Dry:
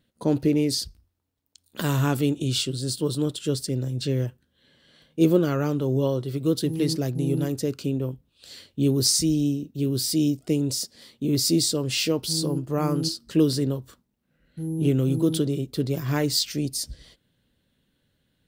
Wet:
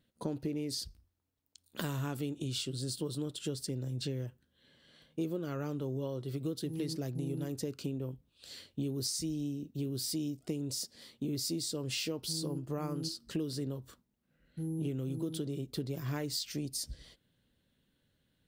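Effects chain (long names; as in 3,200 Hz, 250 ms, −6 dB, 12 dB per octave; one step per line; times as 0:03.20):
downward compressor, threshold −28 dBFS, peak gain reduction 13.5 dB
level −5 dB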